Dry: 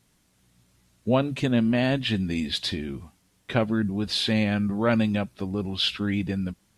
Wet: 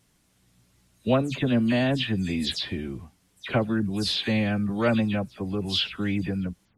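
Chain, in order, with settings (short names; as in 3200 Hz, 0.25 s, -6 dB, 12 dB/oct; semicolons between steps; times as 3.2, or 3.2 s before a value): spectral delay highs early, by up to 0.126 s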